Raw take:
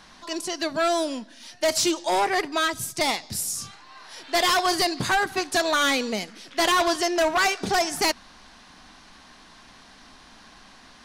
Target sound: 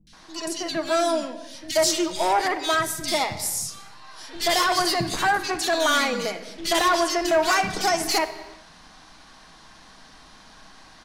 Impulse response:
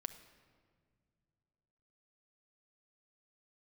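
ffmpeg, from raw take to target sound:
-filter_complex "[0:a]acrossover=split=270|2500[s0][s1][s2];[s2]adelay=70[s3];[s1]adelay=130[s4];[s0][s4][s3]amix=inputs=3:normalize=0[s5];[1:a]atrim=start_sample=2205,afade=t=out:st=0.42:d=0.01,atrim=end_sample=18963,asetrate=42336,aresample=44100[s6];[s5][s6]afir=irnorm=-1:irlink=0,volume=1.58"

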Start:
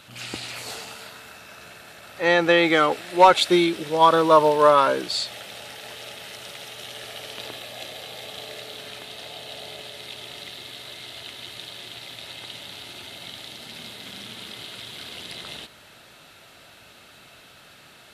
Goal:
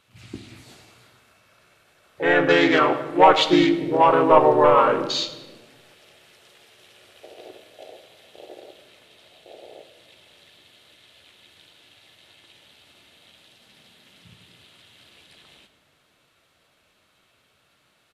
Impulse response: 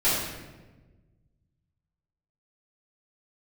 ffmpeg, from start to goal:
-filter_complex "[0:a]acontrast=60,asplit=2[s0][s1];[s1]asetrate=37084,aresample=44100,atempo=1.18921,volume=0.794[s2];[s0][s2]amix=inputs=2:normalize=0,afwtdn=0.0794,asplit=2[s3][s4];[1:a]atrim=start_sample=2205[s5];[s4][s5]afir=irnorm=-1:irlink=0,volume=0.0794[s6];[s3][s6]amix=inputs=2:normalize=0,volume=0.422"

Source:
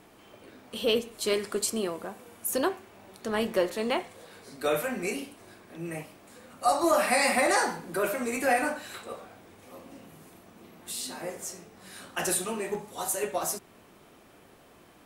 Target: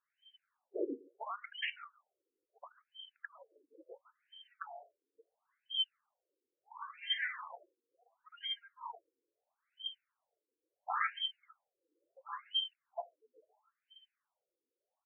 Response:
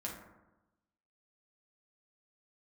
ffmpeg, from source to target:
-filter_complex "[0:a]afftfilt=real='real(if(lt(b,272),68*(eq(floor(b/68),0)*2+eq(floor(b/68),1)*3+eq(floor(b/68),2)*0+eq(floor(b/68),3)*1)+mod(b,68),b),0)':imag='imag(if(lt(b,272),68*(eq(floor(b/68),0)*2+eq(floor(b/68),1)*3+eq(floor(b/68),2)*0+eq(floor(b/68),3)*1)+mod(b,68),b),0)':win_size=2048:overlap=0.75,afftdn=nr=27:nf=-43,asplit=2[s0][s1];[s1]adelay=140,highpass=300,lowpass=3400,asoftclip=type=hard:threshold=0.0891,volume=0.0631[s2];[s0][s2]amix=inputs=2:normalize=0,acompressor=threshold=0.02:ratio=10,afftfilt=real='re*between(b*sr/1024,360*pow(2300/360,0.5+0.5*sin(2*PI*0.73*pts/sr))/1.41,360*pow(2300/360,0.5+0.5*sin(2*PI*0.73*pts/sr))*1.41)':imag='im*between(b*sr/1024,360*pow(2300/360,0.5+0.5*sin(2*PI*0.73*pts/sr))/1.41,360*pow(2300/360,0.5+0.5*sin(2*PI*0.73*pts/sr))*1.41)':win_size=1024:overlap=0.75,volume=4.22"

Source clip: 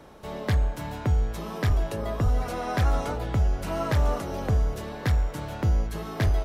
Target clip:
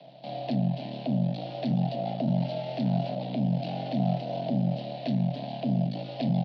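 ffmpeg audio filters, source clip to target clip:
-filter_complex "[0:a]aemphasis=mode=reproduction:type=75fm,asplit=2[s0][s1];[s1]aeval=exprs='0.0631*(abs(mod(val(0)/0.0631+3,4)-2)-1)':c=same,volume=0.316[s2];[s0][s2]amix=inputs=2:normalize=0,acrossover=split=390[s3][s4];[s4]acompressor=threshold=0.0282:ratio=6[s5];[s3][s5]amix=inputs=2:normalize=0,aeval=exprs='max(val(0),0)':c=same,firequalizer=gain_entry='entry(140,0);entry(260,-13);entry(520,11);entry(1000,-23);entry(2700,7);entry(4300,11);entry(6700,-22);entry(9900,-25)':delay=0.05:min_phase=1,afreqshift=130,asplit=2[s6][s7];[s7]aecho=0:1:12|35:0.15|0.178[s8];[s6][s8]amix=inputs=2:normalize=0,volume=0.841"

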